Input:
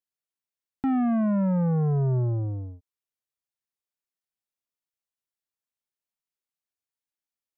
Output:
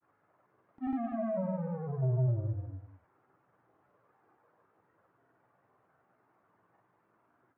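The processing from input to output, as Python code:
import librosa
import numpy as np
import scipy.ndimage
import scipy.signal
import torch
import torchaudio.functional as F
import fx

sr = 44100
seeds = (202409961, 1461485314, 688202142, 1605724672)

y = fx.peak_eq(x, sr, hz=630.0, db=13.0, octaves=0.23)
y = fx.dmg_noise_band(y, sr, seeds[0], low_hz=110.0, high_hz=1400.0, level_db=-61.0)
y = fx.chorus_voices(y, sr, voices=6, hz=0.49, base_ms=17, depth_ms=1.8, mix_pct=60)
y = fx.granulator(y, sr, seeds[1], grain_ms=100.0, per_s=20.0, spray_ms=100.0, spread_st=0)
y = y + 10.0 ** (-10.5 / 20.0) * np.pad(y, (int(192 * sr / 1000.0), 0))[:len(y)]
y = F.gain(torch.from_numpy(y), -6.5).numpy()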